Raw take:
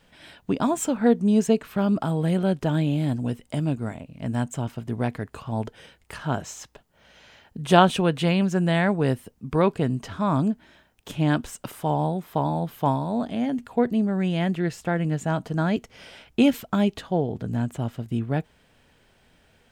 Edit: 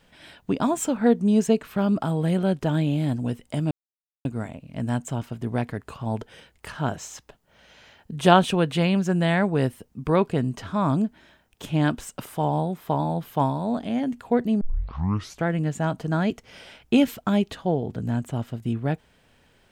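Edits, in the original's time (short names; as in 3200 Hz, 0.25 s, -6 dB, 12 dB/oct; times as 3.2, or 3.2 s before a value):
3.71 insert silence 0.54 s
14.07 tape start 0.86 s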